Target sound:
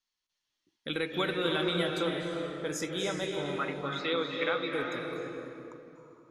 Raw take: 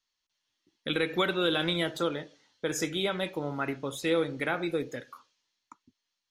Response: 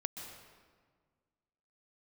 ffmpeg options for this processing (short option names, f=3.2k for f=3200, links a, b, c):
-filter_complex "[0:a]asettb=1/sr,asplit=3[a][b][c];[a]atrim=end=3.564[d];[b]atrim=start=3.56:end=4.73,asetpts=PTS-STARTPTS,afade=t=in:d=0.004:c=qsin,afade=t=out:st=1.166:d=0.004:c=qsin,highpass=220,equalizer=f=350:t=q:w=4:g=-4,equalizer=f=740:t=q:w=4:g=-7,equalizer=f=1.2k:t=q:w=4:g=8,equalizer=f=2.2k:t=q:w=4:g=3,equalizer=f=3.6k:t=q:w=4:g=8,lowpass=f=4.9k:w=0.5412,lowpass=f=4.9k:w=1.3066[e];[c]atrim=start=4.726[f];[d][e]acrossfade=d=0.004:c1=hsin:c2=qsin[g];[g][f]acrossfade=d=0.004:c1=qsin:c2=hsin[h];[1:a]atrim=start_sample=2205,asetrate=22050,aresample=44100[i];[h][i]afir=irnorm=-1:irlink=0,volume=-6dB"